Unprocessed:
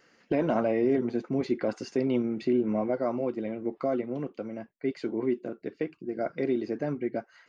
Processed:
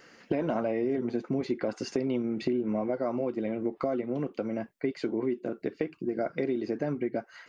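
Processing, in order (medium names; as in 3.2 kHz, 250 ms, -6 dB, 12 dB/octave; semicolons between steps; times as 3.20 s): compression 4:1, threshold -35 dBFS, peak gain reduction 12.5 dB; trim +7.5 dB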